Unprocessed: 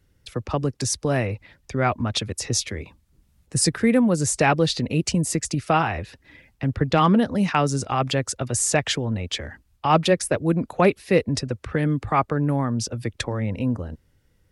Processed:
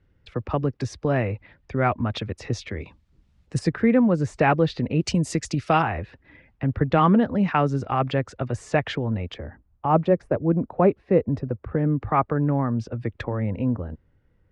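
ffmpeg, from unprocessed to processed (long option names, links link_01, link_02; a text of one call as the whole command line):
ffmpeg -i in.wav -af "asetnsamples=nb_out_samples=441:pad=0,asendcmd='2.8 lowpass f 4300;3.59 lowpass f 2100;5.01 lowpass f 5100;5.82 lowpass f 2100;9.34 lowpass f 1000;12.01 lowpass f 1800',lowpass=2400" out.wav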